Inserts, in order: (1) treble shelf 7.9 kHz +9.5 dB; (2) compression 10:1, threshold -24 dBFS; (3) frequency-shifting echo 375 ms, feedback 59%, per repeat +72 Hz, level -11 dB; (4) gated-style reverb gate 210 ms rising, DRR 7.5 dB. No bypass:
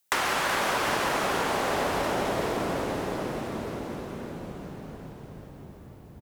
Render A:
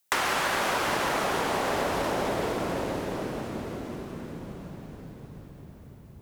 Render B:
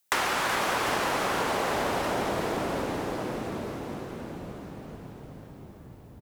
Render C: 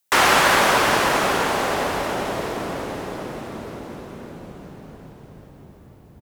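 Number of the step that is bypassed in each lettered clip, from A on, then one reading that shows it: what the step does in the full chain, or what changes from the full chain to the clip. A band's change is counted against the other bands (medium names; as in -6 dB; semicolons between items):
3, echo-to-direct -5.0 dB to -7.5 dB; 4, echo-to-direct -5.0 dB to -9.0 dB; 2, mean gain reduction 2.5 dB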